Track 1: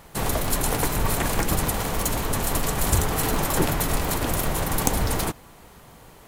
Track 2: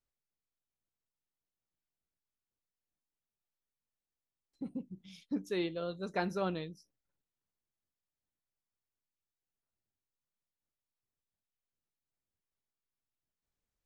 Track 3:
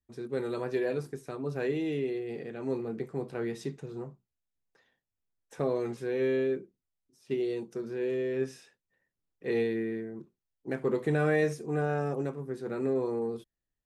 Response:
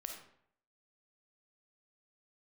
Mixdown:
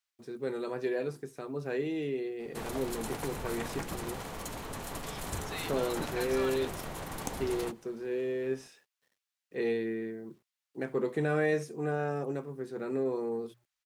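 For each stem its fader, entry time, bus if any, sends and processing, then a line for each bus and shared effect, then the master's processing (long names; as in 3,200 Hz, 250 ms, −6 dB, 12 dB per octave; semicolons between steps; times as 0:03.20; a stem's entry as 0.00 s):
−12.5 dB, 2.40 s, no send, high-shelf EQ 11,000 Hz −11.5 dB
−3.0 dB, 0.00 s, no send, guitar amp tone stack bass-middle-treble 10-0-10; mid-hump overdrive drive 22 dB, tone 3,200 Hz, clips at −27 dBFS
−1.5 dB, 0.10 s, no send, mains-hum notches 60/120 Hz; bit-depth reduction 12 bits, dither none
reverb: not used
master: low-shelf EQ 100 Hz −8 dB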